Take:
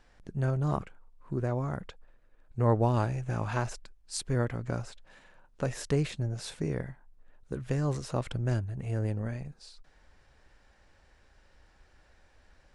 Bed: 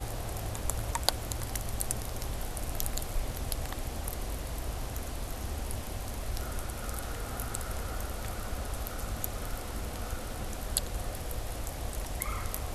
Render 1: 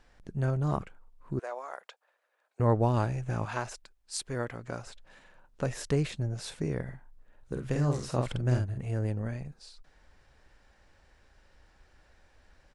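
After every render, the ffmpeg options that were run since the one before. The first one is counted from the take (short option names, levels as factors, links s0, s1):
-filter_complex "[0:a]asettb=1/sr,asplit=3[s0][s1][s2];[s0]atrim=end=1.394[s3];[s1]atrim=start=1.39:end=2.6,asetpts=PTS-STARTPTS,afade=t=in:d=0.004:c=qsin,afade=t=out:st=1.206:d=0.004:c=qsin,highpass=f=570:w=0.5412,highpass=f=570:w=1.3066[s4];[s2]atrim=start=2.596[s5];[s3][s4]acrossfade=d=0.004:c1=hsin:c2=qsin[s6];[s6][s5]acrossfade=d=0.004:c1=qsin:c2=hsin,asettb=1/sr,asplit=3[s7][s8][s9];[s7]atrim=end=3.454[s10];[s8]atrim=start=3.45:end=4.87,asetpts=PTS-STARTPTS,afade=t=in:d=0.004:c=qsin,afade=t=out:st=1.416:d=0.004:c=qsin,lowshelf=f=260:g=-10.5[s11];[s9]atrim=start=4.866[s12];[s10][s11]acrossfade=d=0.004:c1=hsin:c2=qsin[s13];[s13][s12]acrossfade=d=0.004:c1=qsin:c2=hsin,asplit=3[s14][s15][s16];[s14]afade=t=out:st=6.86:d=0.02[s17];[s15]asplit=2[s18][s19];[s19]adelay=48,volume=0.631[s20];[s18][s20]amix=inputs=2:normalize=0,afade=t=in:st=6.86:d=0.02,afade=t=out:st=8.77:d=0.02[s21];[s16]afade=t=in:st=8.77:d=0.02[s22];[s17][s21][s22]amix=inputs=3:normalize=0"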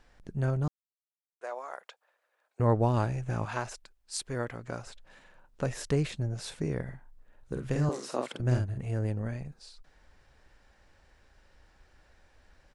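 -filter_complex "[0:a]asettb=1/sr,asplit=3[s0][s1][s2];[s0]atrim=end=7.894[s3];[s1]atrim=start=7.89:end=8.4,asetpts=PTS-STARTPTS,afade=t=in:d=0.004:c=qsin,afade=t=out:st=0.506:d=0.004:c=qsin,highpass=f=250:w=0.5412,highpass=f=250:w=1.3066[s4];[s2]atrim=start=8.396[s5];[s3][s4]acrossfade=d=0.004:c1=hsin:c2=qsin[s6];[s6][s5]acrossfade=d=0.004:c1=qsin:c2=hsin,asplit=3[s7][s8][s9];[s7]atrim=end=0.68,asetpts=PTS-STARTPTS,afade=t=out:st=0.676:d=0.004:c=hsin[s10];[s8]atrim=start=0.68:end=1.41,asetpts=PTS-STARTPTS,volume=0[s11];[s9]atrim=start=1.41,asetpts=PTS-STARTPTS,afade=t=in:d=0.004:c=hsin[s12];[s10][s11][s12]concat=n=3:v=0:a=1"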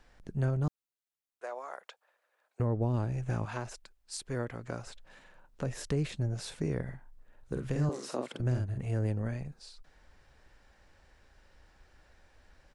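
-filter_complex "[0:a]acrossover=split=480[s0][s1];[s1]acompressor=threshold=0.0112:ratio=3[s2];[s0][s2]amix=inputs=2:normalize=0,alimiter=limit=0.1:level=0:latency=1:release=215"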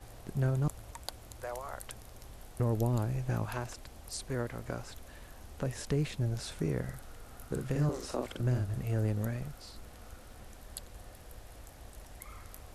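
-filter_complex "[1:a]volume=0.2[s0];[0:a][s0]amix=inputs=2:normalize=0"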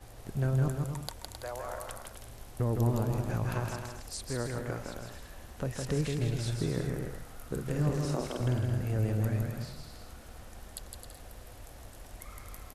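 -af "aecho=1:1:160|264|331.6|375.5|404.1:0.631|0.398|0.251|0.158|0.1"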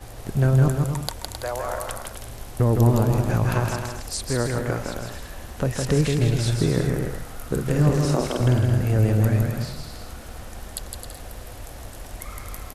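-af "volume=3.35"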